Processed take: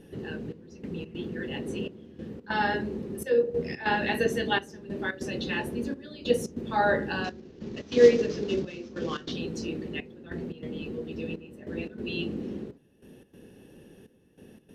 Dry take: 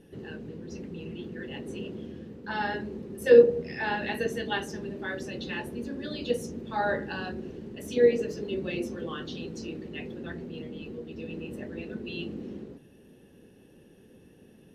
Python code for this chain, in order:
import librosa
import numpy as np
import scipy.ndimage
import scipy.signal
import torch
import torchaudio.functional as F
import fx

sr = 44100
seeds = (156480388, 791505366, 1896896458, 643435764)

y = fx.cvsd(x, sr, bps=32000, at=(7.24, 9.32))
y = fx.step_gate(y, sr, bpm=144, pattern='xxxxx...xx.xx', floor_db=-12.0, edge_ms=4.5)
y = y * 10.0 ** (4.0 / 20.0)